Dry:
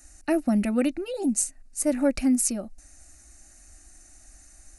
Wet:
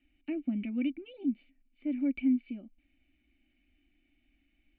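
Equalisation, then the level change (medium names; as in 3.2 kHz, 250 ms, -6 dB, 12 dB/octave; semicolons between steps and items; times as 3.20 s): tilt shelf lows -9 dB, about 640 Hz; dynamic bell 3.2 kHz, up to -6 dB, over -44 dBFS, Q 1.8; cascade formant filter i; +2.0 dB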